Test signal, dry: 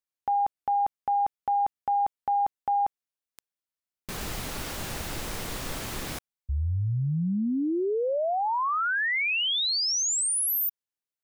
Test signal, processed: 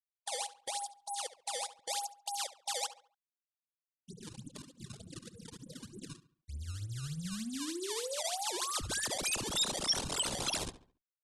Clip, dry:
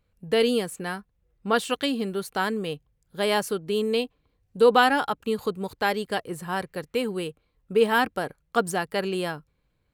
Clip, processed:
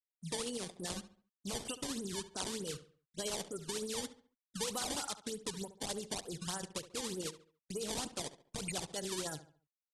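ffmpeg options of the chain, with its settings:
ffmpeg -i in.wav -filter_complex "[0:a]highpass=110,afftfilt=real='re*gte(hypot(re,im),0.0631)':imag='im*gte(hypot(re,im),0.0631)':win_size=1024:overlap=0.75,acompressor=threshold=-36dB:ratio=8:attack=2.1:release=41:knee=1:detection=peak,acrusher=samples=19:mix=1:aa=0.000001:lfo=1:lforange=30.4:lforate=3.3,asplit=2[link_01][link_02];[link_02]adelay=70,lowpass=frequency=3200:poles=1,volume=-13dB,asplit=2[link_03][link_04];[link_04]adelay=70,lowpass=frequency=3200:poles=1,volume=0.38,asplit=2[link_05][link_06];[link_06]adelay=70,lowpass=frequency=3200:poles=1,volume=0.38,asplit=2[link_07][link_08];[link_08]adelay=70,lowpass=frequency=3200:poles=1,volume=0.38[link_09];[link_03][link_05][link_07][link_09]amix=inputs=4:normalize=0[link_10];[link_01][link_10]amix=inputs=2:normalize=0,tremolo=f=14:d=0.39,aexciter=amount=4.9:drive=3.4:freq=3100,aresample=22050,aresample=44100,volume=-1.5dB" -ar 48000 -c:a libopus -b:a 24k out.opus

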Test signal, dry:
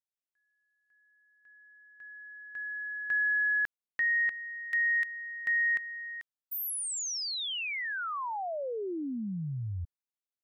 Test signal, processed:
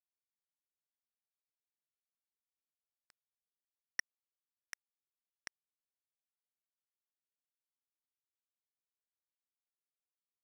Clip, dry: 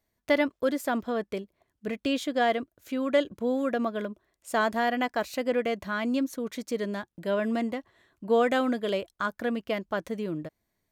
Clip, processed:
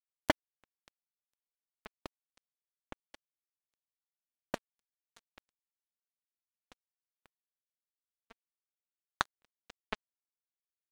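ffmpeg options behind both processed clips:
ffmpeg -i in.wav -af "acompressor=threshold=-39dB:ratio=8:attack=53:release=460:knee=1:detection=peak,acrusher=bits=3:mix=0:aa=0.5,volume=8dB" out.wav

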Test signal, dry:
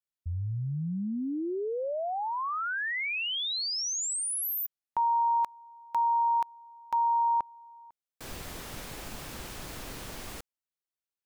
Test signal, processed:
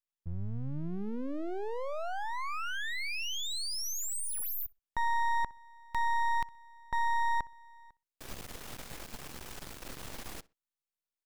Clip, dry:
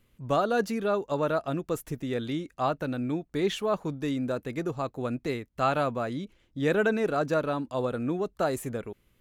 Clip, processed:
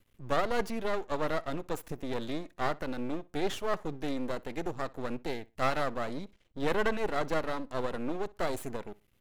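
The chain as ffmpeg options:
ffmpeg -i in.wav -filter_complex "[0:a]aeval=exprs='max(val(0),0)':channel_layout=same,asplit=2[link_01][link_02];[link_02]adelay=62,lowpass=frequency=4200:poles=1,volume=-22dB,asplit=2[link_03][link_04];[link_04]adelay=62,lowpass=frequency=4200:poles=1,volume=0.24[link_05];[link_01][link_03][link_05]amix=inputs=3:normalize=0" out.wav

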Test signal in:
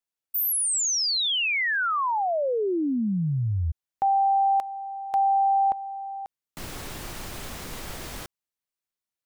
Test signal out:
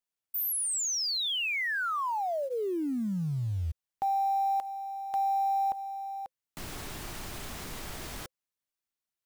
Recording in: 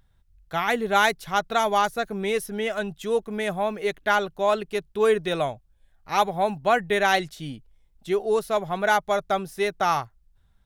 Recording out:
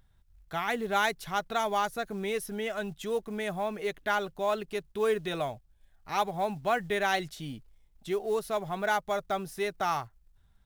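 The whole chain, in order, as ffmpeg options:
ffmpeg -i in.wav -filter_complex "[0:a]bandreject=frequency=520:width=12,asplit=2[link_01][link_02];[link_02]acompressor=threshold=-34dB:ratio=16:attack=1.4:release=68:knee=1:detection=rms,volume=0.5dB[link_03];[link_01][link_03]amix=inputs=2:normalize=0,acrusher=bits=7:mode=log:mix=0:aa=0.000001,volume=-8dB" out.wav

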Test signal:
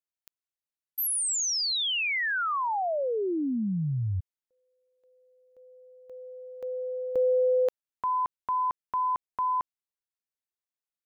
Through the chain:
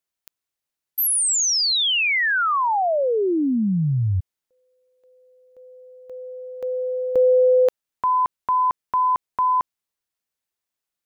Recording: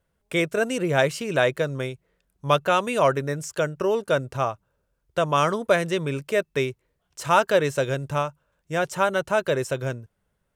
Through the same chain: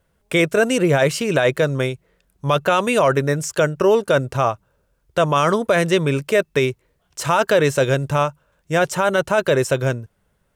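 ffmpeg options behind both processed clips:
ffmpeg -i in.wav -af "alimiter=limit=-15dB:level=0:latency=1:release=13,volume=8dB" out.wav

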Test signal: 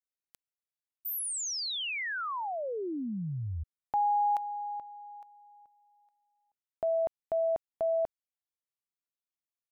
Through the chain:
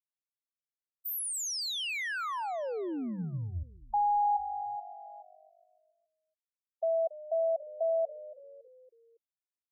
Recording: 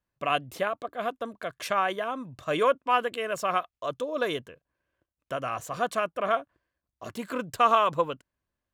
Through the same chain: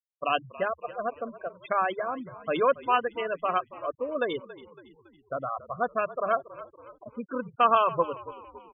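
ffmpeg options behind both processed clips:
ffmpeg -i in.wav -filter_complex "[0:a]bandreject=frequency=50:width_type=h:width=6,bandreject=frequency=100:width_type=h:width=6,bandreject=frequency=150:width_type=h:width=6,bandreject=frequency=200:width_type=h:width=6,afftfilt=real='re*gte(hypot(re,im),0.0562)':imag='im*gte(hypot(re,im),0.0562)':win_size=1024:overlap=0.75,asplit=5[link_01][link_02][link_03][link_04][link_05];[link_02]adelay=279,afreqshift=-49,volume=-17dB[link_06];[link_03]adelay=558,afreqshift=-98,volume=-23.2dB[link_07];[link_04]adelay=837,afreqshift=-147,volume=-29.4dB[link_08];[link_05]adelay=1116,afreqshift=-196,volume=-35.6dB[link_09];[link_01][link_06][link_07][link_08][link_09]amix=inputs=5:normalize=0" out.wav

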